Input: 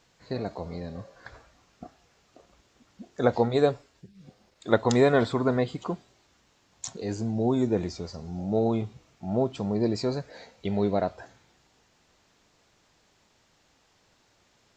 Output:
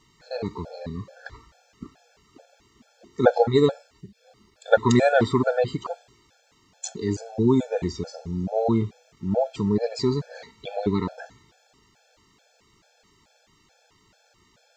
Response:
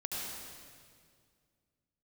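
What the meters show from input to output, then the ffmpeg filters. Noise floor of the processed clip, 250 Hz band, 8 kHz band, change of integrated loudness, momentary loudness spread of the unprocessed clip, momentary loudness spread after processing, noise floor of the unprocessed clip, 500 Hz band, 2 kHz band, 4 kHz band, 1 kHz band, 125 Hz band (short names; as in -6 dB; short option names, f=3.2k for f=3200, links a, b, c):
-63 dBFS, +3.0 dB, +3.5 dB, +3.0 dB, 17 LU, 18 LU, -66 dBFS, +3.0 dB, +5.0 dB, +3.0 dB, +4.0 dB, +3.0 dB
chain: -af "afftfilt=real='re*gt(sin(2*PI*2.3*pts/sr)*(1-2*mod(floor(b*sr/1024/450),2)),0)':imag='im*gt(sin(2*PI*2.3*pts/sr)*(1-2*mod(floor(b*sr/1024/450),2)),0)':win_size=1024:overlap=0.75,volume=6.5dB"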